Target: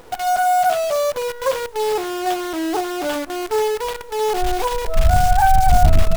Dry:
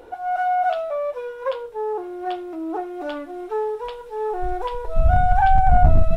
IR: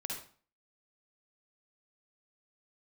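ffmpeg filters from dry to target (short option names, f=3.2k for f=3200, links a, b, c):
-filter_complex "[0:a]asplit=2[a][b];[b]acompressor=threshold=-20dB:ratio=16,volume=1dB[c];[a][c]amix=inputs=2:normalize=0,acrusher=bits=5:dc=4:mix=0:aa=0.000001,volume=-1dB"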